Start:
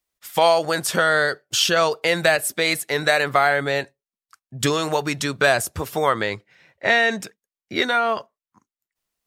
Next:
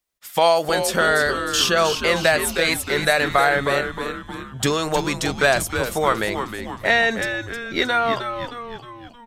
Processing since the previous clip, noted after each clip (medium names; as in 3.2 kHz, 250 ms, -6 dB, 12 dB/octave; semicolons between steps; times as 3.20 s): frequency-shifting echo 312 ms, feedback 52%, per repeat -120 Hz, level -8 dB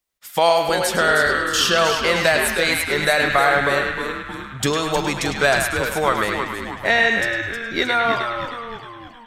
band-passed feedback delay 104 ms, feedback 61%, band-pass 1.9 kHz, level -3 dB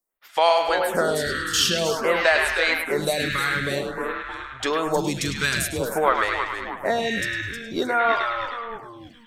lamp-driven phase shifter 0.51 Hz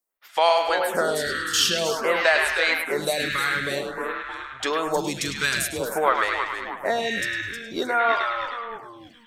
bass shelf 220 Hz -9 dB